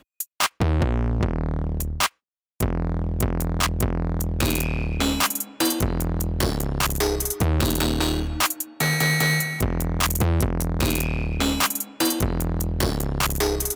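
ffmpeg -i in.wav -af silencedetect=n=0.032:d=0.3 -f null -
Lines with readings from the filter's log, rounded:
silence_start: 2.07
silence_end: 2.60 | silence_duration: 0.53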